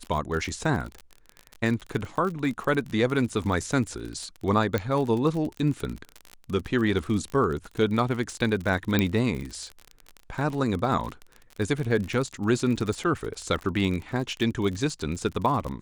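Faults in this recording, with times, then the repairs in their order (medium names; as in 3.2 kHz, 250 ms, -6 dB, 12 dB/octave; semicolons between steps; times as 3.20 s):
crackle 37 per s -30 dBFS
4.78 s: pop -14 dBFS
8.99 s: pop -9 dBFS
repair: de-click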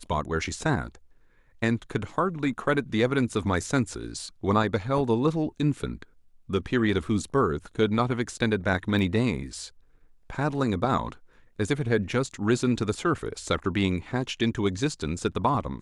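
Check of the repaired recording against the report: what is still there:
4.78 s: pop
8.99 s: pop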